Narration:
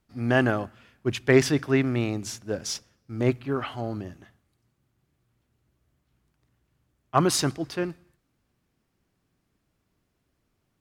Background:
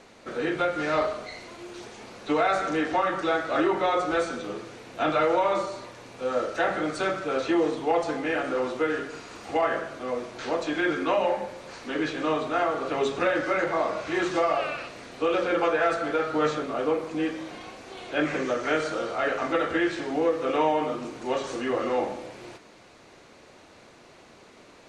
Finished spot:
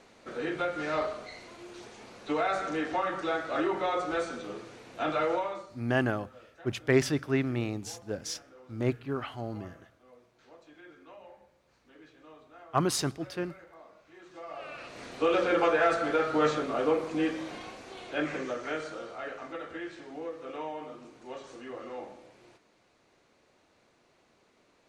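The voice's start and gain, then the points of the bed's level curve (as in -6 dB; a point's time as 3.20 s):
5.60 s, -5.5 dB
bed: 5.34 s -5.5 dB
5.91 s -27 dB
14.22 s -27 dB
15.03 s -1 dB
17.56 s -1 dB
19.54 s -14.5 dB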